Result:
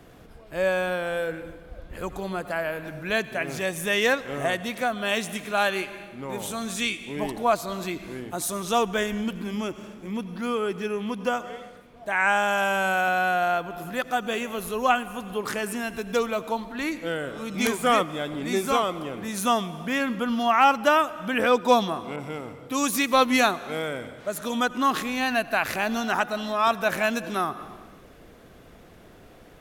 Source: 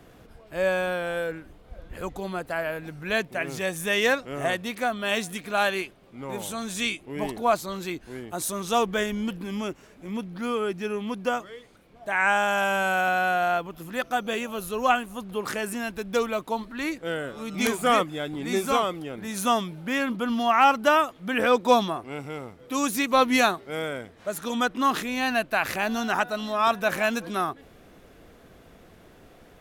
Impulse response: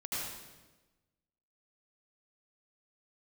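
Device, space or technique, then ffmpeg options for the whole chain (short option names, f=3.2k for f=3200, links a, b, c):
ducked reverb: -filter_complex "[0:a]asplit=3[a][b][c];[1:a]atrim=start_sample=2205[d];[b][d]afir=irnorm=-1:irlink=0[e];[c]apad=whole_len=1305677[f];[e][f]sidechaincompress=threshold=-32dB:ratio=8:attack=23:release=285,volume=-11dB[g];[a][g]amix=inputs=2:normalize=0,asettb=1/sr,asplit=3[h][i][j];[h]atrim=end=22.164[k];[i]atrim=start=22.16:end=23.32,asetpts=PTS-STARTPTS,afade=t=in:d=0.004:c=qsin,afade=t=out:st=1.156:d=0.004:c=qsin,adynamicequalizer=threshold=0.0251:dfrequency=2200:dqfactor=0.7:tfrequency=2200:tqfactor=0.7:attack=5:release=100:ratio=0.375:range=1.5:mode=boostabove:tftype=highshelf[l];[j]atrim=start=23.316[m];[k][l]acrossfade=d=0.004:c1=hsin:c2=qsin[n];[n][m]acrossfade=d=0.004:c1=qsin:c2=hsin"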